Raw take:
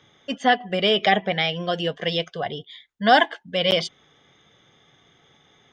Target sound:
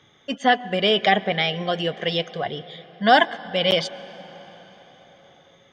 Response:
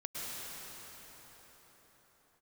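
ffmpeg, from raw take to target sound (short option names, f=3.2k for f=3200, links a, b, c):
-filter_complex "[0:a]bandreject=f=5.1k:w=26,asplit=2[a][b];[1:a]atrim=start_sample=2205,highshelf=f=5.2k:g=-7.5[c];[b][c]afir=irnorm=-1:irlink=0,volume=-18.5dB[d];[a][d]amix=inputs=2:normalize=0"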